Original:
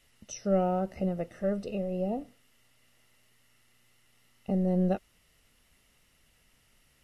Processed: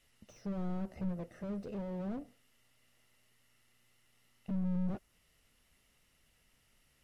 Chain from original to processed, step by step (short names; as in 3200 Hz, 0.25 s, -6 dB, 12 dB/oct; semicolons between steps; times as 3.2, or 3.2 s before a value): dynamic EQ 3300 Hz, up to -4 dB, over -54 dBFS, Q 0.95; slew limiter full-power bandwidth 7.7 Hz; gain -5 dB